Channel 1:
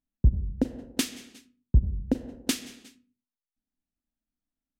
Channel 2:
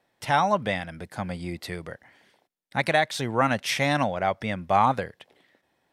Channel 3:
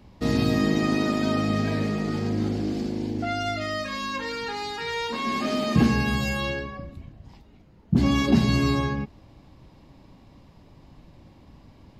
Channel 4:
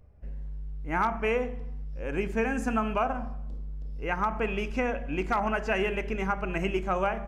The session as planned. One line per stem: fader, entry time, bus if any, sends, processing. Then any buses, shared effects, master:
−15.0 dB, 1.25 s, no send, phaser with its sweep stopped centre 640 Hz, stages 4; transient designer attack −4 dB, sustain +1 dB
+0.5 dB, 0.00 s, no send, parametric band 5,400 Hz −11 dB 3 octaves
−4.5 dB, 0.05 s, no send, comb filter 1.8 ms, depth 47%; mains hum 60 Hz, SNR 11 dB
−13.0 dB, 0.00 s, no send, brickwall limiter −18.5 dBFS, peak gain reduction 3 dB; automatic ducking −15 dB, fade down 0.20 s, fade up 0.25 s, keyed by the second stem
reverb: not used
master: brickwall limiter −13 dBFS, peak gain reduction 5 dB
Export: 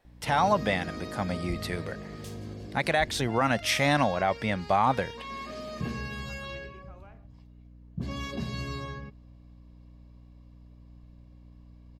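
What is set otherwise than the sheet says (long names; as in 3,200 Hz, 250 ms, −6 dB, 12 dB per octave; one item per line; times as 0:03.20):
stem 2: missing parametric band 5,400 Hz −11 dB 3 octaves
stem 3 −4.5 dB → −13.5 dB
stem 4 −13.0 dB → −25.0 dB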